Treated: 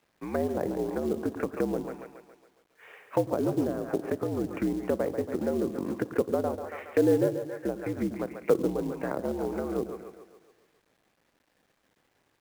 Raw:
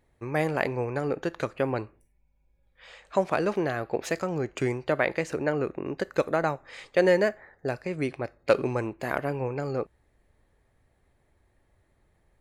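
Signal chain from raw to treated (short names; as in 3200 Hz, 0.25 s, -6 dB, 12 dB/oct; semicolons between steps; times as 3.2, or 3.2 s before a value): mistuned SSB -65 Hz 190–2700 Hz; on a send: split-band echo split 340 Hz, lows 0.101 s, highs 0.139 s, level -9 dB; on the sum: treble ducked by the level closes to 610 Hz, closed at -25 dBFS; companded quantiser 6-bit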